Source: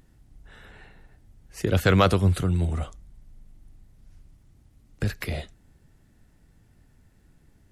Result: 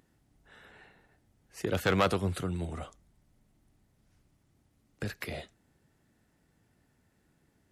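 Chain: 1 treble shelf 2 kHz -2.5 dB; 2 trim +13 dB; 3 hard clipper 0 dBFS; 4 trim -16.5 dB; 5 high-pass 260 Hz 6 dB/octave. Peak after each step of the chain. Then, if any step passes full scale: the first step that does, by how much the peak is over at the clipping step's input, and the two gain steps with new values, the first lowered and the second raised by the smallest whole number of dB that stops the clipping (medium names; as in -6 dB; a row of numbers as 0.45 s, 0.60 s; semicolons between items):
-6.5 dBFS, +6.5 dBFS, 0.0 dBFS, -16.5 dBFS, -14.5 dBFS; step 2, 6.5 dB; step 2 +6 dB, step 4 -9.5 dB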